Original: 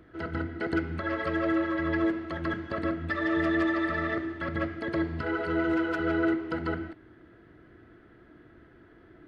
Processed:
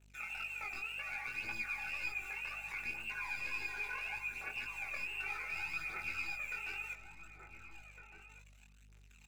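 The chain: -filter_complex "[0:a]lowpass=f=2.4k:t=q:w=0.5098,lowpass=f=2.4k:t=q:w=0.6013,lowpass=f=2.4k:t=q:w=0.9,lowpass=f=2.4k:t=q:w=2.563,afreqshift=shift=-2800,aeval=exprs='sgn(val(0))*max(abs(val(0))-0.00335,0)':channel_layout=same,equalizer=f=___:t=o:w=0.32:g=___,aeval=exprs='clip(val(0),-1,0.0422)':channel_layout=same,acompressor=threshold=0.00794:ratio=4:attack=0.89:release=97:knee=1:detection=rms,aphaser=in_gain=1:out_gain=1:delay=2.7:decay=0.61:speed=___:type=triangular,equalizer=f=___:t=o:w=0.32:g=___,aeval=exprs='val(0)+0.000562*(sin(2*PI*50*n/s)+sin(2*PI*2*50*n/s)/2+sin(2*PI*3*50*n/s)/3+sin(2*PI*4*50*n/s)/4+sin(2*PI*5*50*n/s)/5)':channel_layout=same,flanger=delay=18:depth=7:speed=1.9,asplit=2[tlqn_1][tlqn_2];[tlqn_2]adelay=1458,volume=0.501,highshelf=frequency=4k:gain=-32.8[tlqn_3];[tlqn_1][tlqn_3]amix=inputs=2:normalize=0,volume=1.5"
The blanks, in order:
1.1k, -9.5, 0.67, 400, 8.5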